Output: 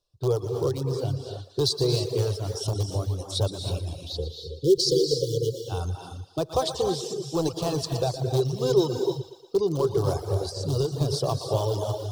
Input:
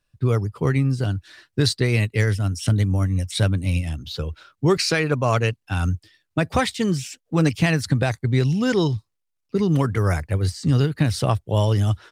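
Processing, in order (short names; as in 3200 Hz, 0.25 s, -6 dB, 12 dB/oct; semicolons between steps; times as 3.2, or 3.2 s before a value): in parallel at -12 dB: wrapped overs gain 12 dB; on the sum: spectral delete 4.12–5.65, 540–2900 Hz; on a send: thinning echo 0.117 s, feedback 57%, high-pass 240 Hz, level -9 dB; on the sum: non-linear reverb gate 0.34 s rising, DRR 4 dB; dynamic EQ 3000 Hz, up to -3 dB, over -37 dBFS, Q 0.97; reverb removal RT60 0.6 s; EQ curve 140 Hz 0 dB, 230 Hz -14 dB, 370 Hz +10 dB, 1100 Hz +3 dB, 2000 Hz -21 dB, 3400 Hz +6 dB, 5200 Hz +9 dB, 8600 Hz +1 dB; gain -9 dB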